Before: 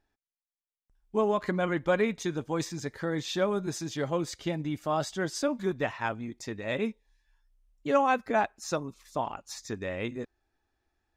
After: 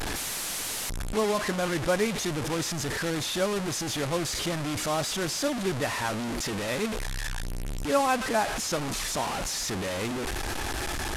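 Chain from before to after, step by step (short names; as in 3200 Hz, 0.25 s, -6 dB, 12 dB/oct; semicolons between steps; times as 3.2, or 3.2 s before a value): delta modulation 64 kbps, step -25 dBFS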